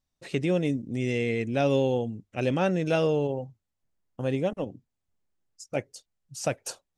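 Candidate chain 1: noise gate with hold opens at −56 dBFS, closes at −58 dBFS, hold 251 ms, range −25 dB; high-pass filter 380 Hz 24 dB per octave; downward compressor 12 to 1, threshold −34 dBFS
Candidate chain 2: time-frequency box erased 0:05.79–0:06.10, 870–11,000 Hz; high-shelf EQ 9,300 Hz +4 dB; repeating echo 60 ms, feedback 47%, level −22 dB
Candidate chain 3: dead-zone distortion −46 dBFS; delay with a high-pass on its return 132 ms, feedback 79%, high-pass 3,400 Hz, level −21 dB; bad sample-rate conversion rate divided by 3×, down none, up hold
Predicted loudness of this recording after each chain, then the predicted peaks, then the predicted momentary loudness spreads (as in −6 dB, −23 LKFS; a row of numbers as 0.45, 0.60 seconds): −39.5, −28.0, −29.0 LKFS; −23.0, −12.5, −13.0 dBFS; 8, 11, 12 LU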